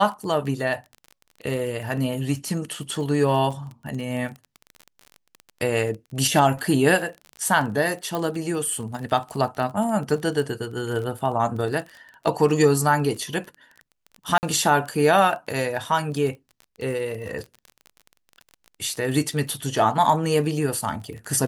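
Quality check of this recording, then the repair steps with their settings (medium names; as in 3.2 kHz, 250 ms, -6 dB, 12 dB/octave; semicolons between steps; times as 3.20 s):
crackle 25 per s -31 dBFS
8.15 s: pop
14.38–14.43 s: dropout 49 ms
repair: de-click; interpolate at 14.38 s, 49 ms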